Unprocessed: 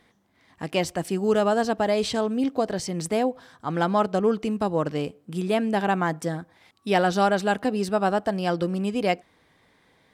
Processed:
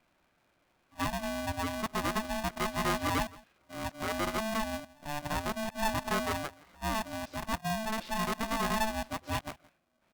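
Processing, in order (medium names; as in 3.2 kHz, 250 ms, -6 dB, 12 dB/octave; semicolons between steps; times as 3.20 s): reverse the whole clip; distance through air 330 m; delay 169 ms -21.5 dB; polarity switched at an audio rate 440 Hz; trim -8.5 dB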